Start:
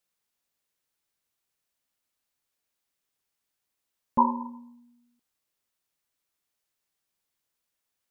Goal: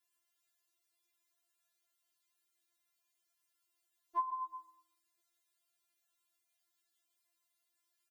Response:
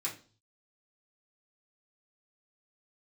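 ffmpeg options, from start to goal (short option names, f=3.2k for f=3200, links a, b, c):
-filter_complex "[0:a]highpass=f=400:p=1,aecho=1:1:138:0.335,asplit=2[a][b];[1:a]atrim=start_sample=2205,asetrate=48510,aresample=44100[c];[b][c]afir=irnorm=-1:irlink=0,volume=-16.5dB[d];[a][d]amix=inputs=2:normalize=0,acompressor=threshold=-33dB:ratio=8,afftfilt=real='re*4*eq(mod(b,16),0)':imag='im*4*eq(mod(b,16),0)':win_size=2048:overlap=0.75,volume=1.5dB"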